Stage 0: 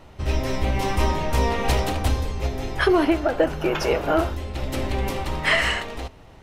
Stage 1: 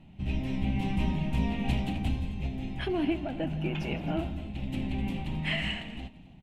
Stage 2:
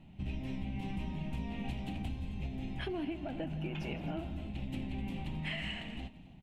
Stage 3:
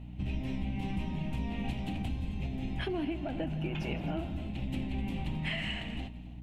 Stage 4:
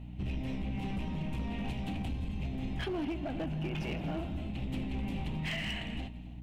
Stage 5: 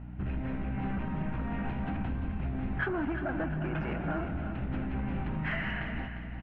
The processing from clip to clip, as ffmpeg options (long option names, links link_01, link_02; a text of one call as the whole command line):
ffmpeg -i in.wav -af "firequalizer=gain_entry='entry(100,0);entry(170,14);entry(460,-13);entry(740,-3);entry(1200,-15);entry(2600,3);entry(5300,-15);entry(7600,-10);entry(14000,-15)':delay=0.05:min_phase=1,aecho=1:1:165|264:0.141|0.133,volume=-8.5dB" out.wav
ffmpeg -i in.wav -af "acompressor=threshold=-32dB:ratio=6,volume=-2.5dB" out.wav
ffmpeg -i in.wav -af "aeval=exprs='val(0)+0.00447*(sin(2*PI*60*n/s)+sin(2*PI*2*60*n/s)/2+sin(2*PI*3*60*n/s)/3+sin(2*PI*4*60*n/s)/4+sin(2*PI*5*60*n/s)/5)':channel_layout=same,volume=3.5dB" out.wav
ffmpeg -i in.wav -af "volume=30.5dB,asoftclip=hard,volume=-30.5dB" out.wav
ffmpeg -i in.wav -af "lowpass=frequency=1500:width_type=q:width=5.1,aecho=1:1:351|702|1053|1404:0.335|0.121|0.0434|0.0156,volume=1.5dB" out.wav